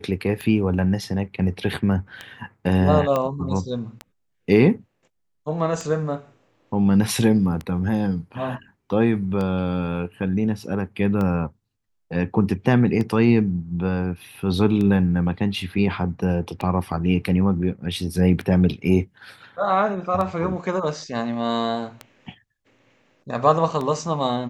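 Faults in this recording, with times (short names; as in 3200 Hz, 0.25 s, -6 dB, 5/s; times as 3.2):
tick 33 1/3 rpm -16 dBFS
3.16 pop -11 dBFS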